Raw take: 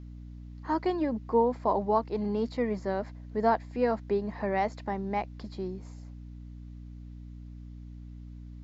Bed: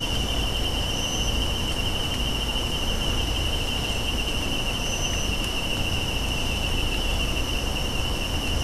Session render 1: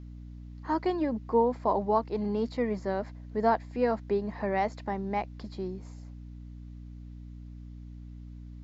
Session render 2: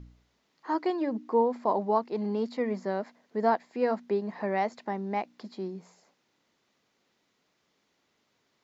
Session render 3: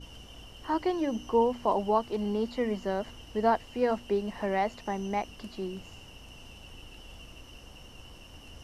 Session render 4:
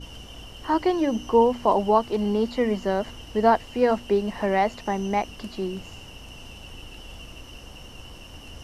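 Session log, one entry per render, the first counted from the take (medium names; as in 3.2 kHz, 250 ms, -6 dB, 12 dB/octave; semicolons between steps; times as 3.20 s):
no audible change
de-hum 60 Hz, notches 5
add bed -23 dB
trim +6.5 dB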